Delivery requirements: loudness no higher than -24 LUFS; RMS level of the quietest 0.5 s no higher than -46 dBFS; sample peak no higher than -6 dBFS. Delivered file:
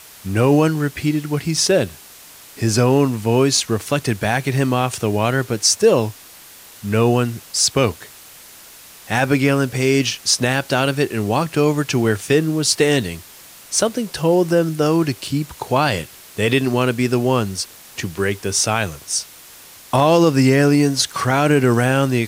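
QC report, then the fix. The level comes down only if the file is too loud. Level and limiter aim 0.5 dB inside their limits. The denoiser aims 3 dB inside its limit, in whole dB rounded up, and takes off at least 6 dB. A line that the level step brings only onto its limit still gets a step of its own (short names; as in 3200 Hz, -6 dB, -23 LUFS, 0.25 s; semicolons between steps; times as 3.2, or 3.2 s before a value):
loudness -18.0 LUFS: fail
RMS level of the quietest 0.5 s -42 dBFS: fail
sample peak -3.5 dBFS: fail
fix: gain -6.5 dB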